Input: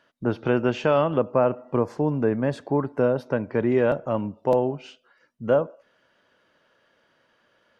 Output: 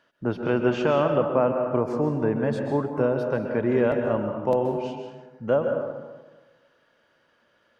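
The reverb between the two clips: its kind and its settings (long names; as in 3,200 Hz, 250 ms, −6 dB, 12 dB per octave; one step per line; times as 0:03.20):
dense smooth reverb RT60 1.3 s, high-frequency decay 0.5×, pre-delay 115 ms, DRR 4 dB
level −2 dB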